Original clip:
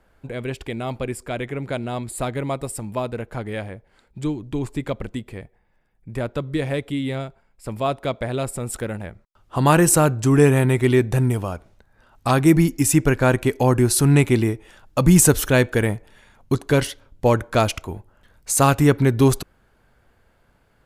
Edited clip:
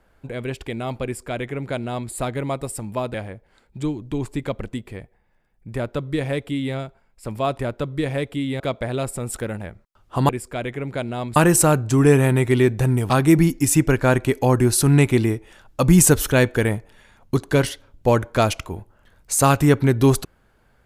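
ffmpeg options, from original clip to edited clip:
-filter_complex "[0:a]asplit=7[s0][s1][s2][s3][s4][s5][s6];[s0]atrim=end=3.142[s7];[s1]atrim=start=3.548:end=8.002[s8];[s2]atrim=start=6.148:end=7.162[s9];[s3]atrim=start=7.998:end=9.692[s10];[s4]atrim=start=1.038:end=2.112[s11];[s5]atrim=start=9.688:end=11.432[s12];[s6]atrim=start=12.278[s13];[s7][s8]acrossfade=d=0.004:c1=hsin:c2=hsin[s14];[s14][s9]acrossfade=d=0.004:c1=hsin:c2=hsin[s15];[s15][s10]acrossfade=d=0.004:c1=hsin:c2=hsin[s16];[s16][s11]acrossfade=d=0.004:c1=hsin:c2=hsin[s17];[s17][s12]acrossfade=d=0.004:c1=hsin:c2=hsin[s18];[s18][s13]acrossfade=d=0.004:c1=hsin:c2=hsin"

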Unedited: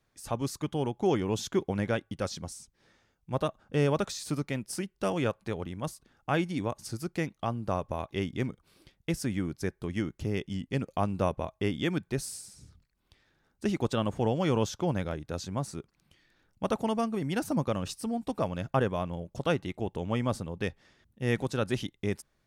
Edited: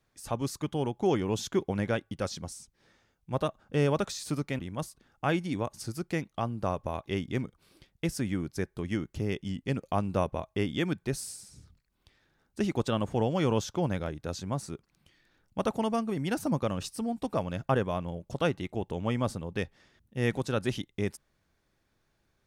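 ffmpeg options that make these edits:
-filter_complex "[0:a]asplit=2[s0][s1];[s0]atrim=end=4.592[s2];[s1]atrim=start=5.638[s3];[s2][s3]acrossfade=d=0.004:c1=hsin:c2=hsin"

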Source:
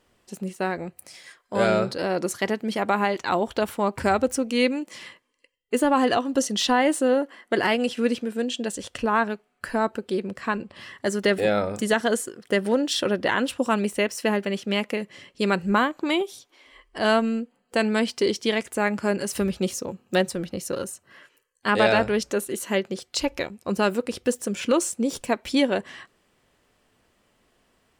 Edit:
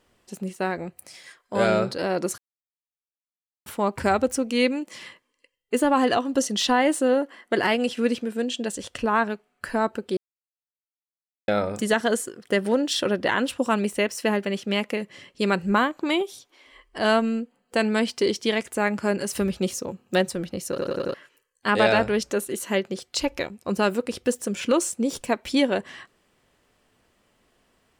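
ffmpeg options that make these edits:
-filter_complex "[0:a]asplit=10[s0][s1][s2][s3][s4][s5][s6][s7][s8][s9];[s0]atrim=end=2.38,asetpts=PTS-STARTPTS,afade=t=out:st=2.376:d=0.004:c=hsin[s10];[s1]atrim=start=2.38:end=3.66,asetpts=PTS-STARTPTS,volume=0[s11];[s2]atrim=start=3.66:end=10.17,asetpts=PTS-STARTPTS,afade=t=in:d=0.004:c=hsin,afade=t=out:st=6.506:d=0.004:c=hsin[s12];[s3]atrim=start=10.17:end=11.48,asetpts=PTS-STARTPTS,volume=0[s13];[s4]atrim=start=11.48:end=20.782,asetpts=PTS-STARTPTS,afade=t=in:d=0.004:c=hsin[s14];[s5]atrim=start=20.688:end=20.782[s15];[s6]atrim=start=20.688:end=20.782[s16];[s7]atrim=start=20.688:end=20.782[s17];[s8]atrim=start=20.688:end=20.782[s18];[s9]atrim=start=21.138[s19];[s10][s11][s12][s13][s14]concat=n=5:v=0:a=1[s20];[s20][s15]acrossfade=d=0.004:c1=hsin:c2=hsin[s21];[s21][s16]acrossfade=d=0.004:c1=hsin:c2=hsin[s22];[s22][s17]acrossfade=d=0.004:c1=hsin:c2=hsin[s23];[s23][s18]acrossfade=d=0.004:c1=hsin:c2=hsin[s24];[s24][s19]acrossfade=d=0.004:c1=hsin:c2=hsin"

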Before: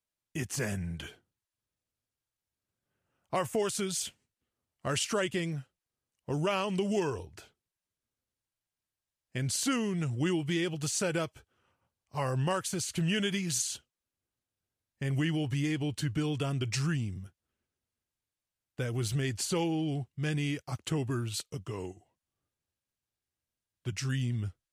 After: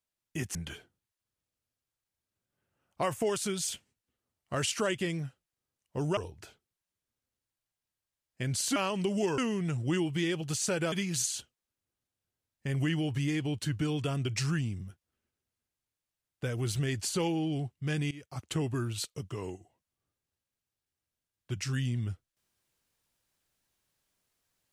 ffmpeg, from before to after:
-filter_complex "[0:a]asplit=7[s0][s1][s2][s3][s4][s5][s6];[s0]atrim=end=0.552[s7];[s1]atrim=start=0.878:end=6.502[s8];[s2]atrim=start=7.118:end=9.712[s9];[s3]atrim=start=6.498:end=7.122[s10];[s4]atrim=start=9.708:end=11.252[s11];[s5]atrim=start=13.278:end=20.47,asetpts=PTS-STARTPTS,afade=t=out:st=7.188:d=0.004:c=hsin:silence=0.1[s12];[s6]atrim=start=20.47,asetpts=PTS-STARTPTS,afade=t=in:d=0.4:silence=0.1[s13];[s7][s8]acrossfade=d=0.004:c1=hsin:c2=hsin[s14];[s14][s9]acrossfade=d=0.004:c1=hsin:c2=hsin[s15];[s15][s10]acrossfade=d=0.004:c1=hsin:c2=hsin[s16];[s16][s11]acrossfade=d=0.004:c1=hsin:c2=hsin[s17];[s12][s13]concat=n=2:v=0:a=1[s18];[s17][s18]acrossfade=d=0.004:c1=hsin:c2=hsin"

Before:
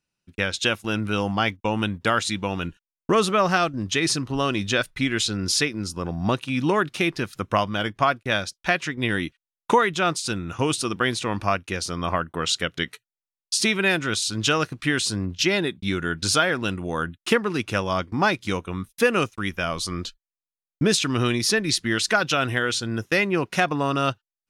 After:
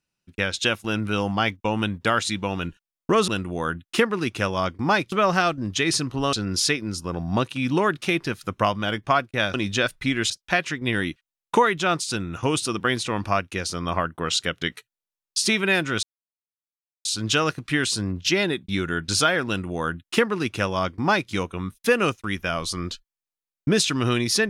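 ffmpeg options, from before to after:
-filter_complex "[0:a]asplit=7[s0][s1][s2][s3][s4][s5][s6];[s0]atrim=end=3.282[s7];[s1]atrim=start=16.608:end=18.452[s8];[s2]atrim=start=3.278:end=4.492[s9];[s3]atrim=start=5.248:end=8.462[s10];[s4]atrim=start=4.488:end=5.252[s11];[s5]atrim=start=8.458:end=14.19,asetpts=PTS-STARTPTS,afade=t=out:st=5.728:d=0.004:c=hsin,apad=pad_dur=1.02[s12];[s6]atrim=start=14.19,asetpts=PTS-STARTPTS,afade=t=in:d=0.004:c=hsin[s13];[s7][s8]acrossfade=d=0.004:c1=hsin:c2=hsin[s14];[s14][s9]acrossfade=d=0.004:c1=hsin:c2=hsin[s15];[s15][s10]acrossfade=d=0.004:c1=hsin:c2=hsin[s16];[s16][s11]acrossfade=d=0.004:c1=hsin:c2=hsin[s17];[s12][s13]concat=n=2:v=0:a=1[s18];[s17][s18]acrossfade=d=0.004:c1=hsin:c2=hsin"

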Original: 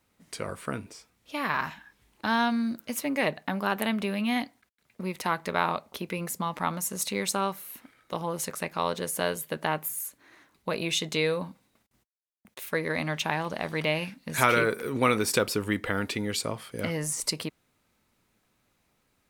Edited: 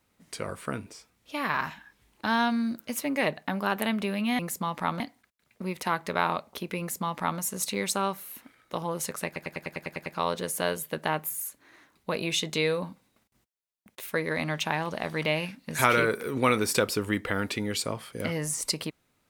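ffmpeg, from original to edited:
-filter_complex "[0:a]asplit=11[s0][s1][s2][s3][s4][s5][s6][s7][s8][s9][s10];[s0]atrim=end=4.392[s11];[s1]atrim=start=6.178:end=6.792[s12];[s2]atrim=start=4.388:end=8.752[s13];[s3]atrim=start=8.648:end=8.752[s14];[s4]atrim=start=8.648:end=8.752[s15];[s5]atrim=start=8.648:end=8.752[s16];[s6]atrim=start=8.648:end=8.752[s17];[s7]atrim=start=8.648:end=8.752[s18];[s8]atrim=start=8.648:end=8.752[s19];[s9]atrim=start=8.648:end=8.752[s20];[s10]atrim=start=8.648[s21];[s11][s12]acrossfade=d=0.004:c1=hsin:c2=hsin[s22];[s22][s13]acrossfade=d=0.004:c1=hsin:c2=hsin[s23];[s23][s14]acrossfade=d=0.004:c1=hsin:c2=hsin[s24];[s24][s15]acrossfade=d=0.004:c1=hsin:c2=hsin[s25];[s25][s16]acrossfade=d=0.004:c1=hsin:c2=hsin[s26];[s26][s17]acrossfade=d=0.004:c1=hsin:c2=hsin[s27];[s27][s18]acrossfade=d=0.004:c1=hsin:c2=hsin[s28];[s28][s19]acrossfade=d=0.004:c1=hsin:c2=hsin[s29];[s29][s20]acrossfade=d=0.004:c1=hsin:c2=hsin[s30];[s30][s21]acrossfade=d=0.004:c1=hsin:c2=hsin"

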